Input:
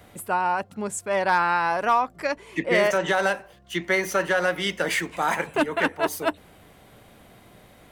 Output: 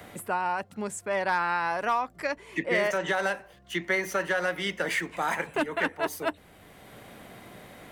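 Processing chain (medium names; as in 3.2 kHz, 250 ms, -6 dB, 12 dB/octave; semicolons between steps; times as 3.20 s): peaking EQ 1.9 kHz +3 dB 0.5 oct; three bands compressed up and down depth 40%; trim -5.5 dB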